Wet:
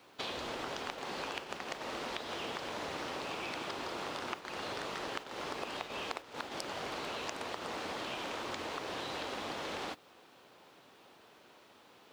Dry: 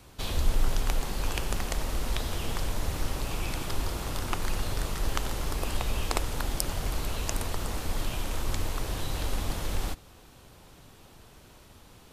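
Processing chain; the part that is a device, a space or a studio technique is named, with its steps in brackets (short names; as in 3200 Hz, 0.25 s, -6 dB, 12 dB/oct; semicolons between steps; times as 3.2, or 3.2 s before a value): baby monitor (BPF 330–4100 Hz; compressor 10:1, threshold -41 dBFS, peak gain reduction 17 dB; white noise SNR 28 dB; gate -47 dBFS, range -7 dB); gain +5 dB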